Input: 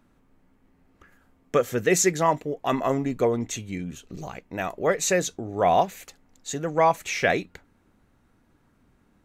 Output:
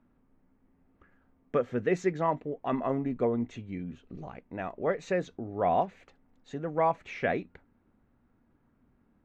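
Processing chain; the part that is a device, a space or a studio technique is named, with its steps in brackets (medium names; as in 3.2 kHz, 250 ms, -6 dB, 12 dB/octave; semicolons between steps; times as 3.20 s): phone in a pocket (low-pass 3.3 kHz 12 dB/octave; peaking EQ 240 Hz +5 dB 0.22 oct; treble shelf 2.5 kHz -10 dB); trim -5.5 dB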